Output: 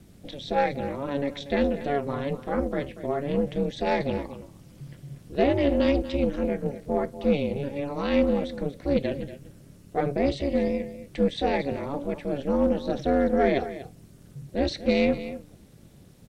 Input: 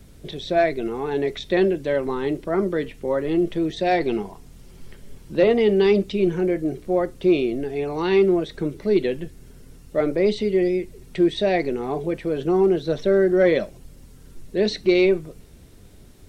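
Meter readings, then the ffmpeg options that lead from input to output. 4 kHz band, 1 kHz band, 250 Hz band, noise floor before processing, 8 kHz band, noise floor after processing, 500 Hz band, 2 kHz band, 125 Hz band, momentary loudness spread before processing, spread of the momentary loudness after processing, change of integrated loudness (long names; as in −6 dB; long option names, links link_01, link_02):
−4.5 dB, −1.5 dB, −3.5 dB, −47 dBFS, can't be measured, −51 dBFS, −6.0 dB, −5.0 dB, −2.0 dB, 9 LU, 15 LU, −5.0 dB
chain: -af "aecho=1:1:238:0.211,aeval=exprs='val(0)*sin(2*PI*140*n/s)':channel_layout=same,aeval=exprs='0.447*(cos(1*acos(clip(val(0)/0.447,-1,1)))-cos(1*PI/2))+0.0126*(cos(6*acos(clip(val(0)/0.447,-1,1)))-cos(6*PI/2))':channel_layout=same,volume=-2dB"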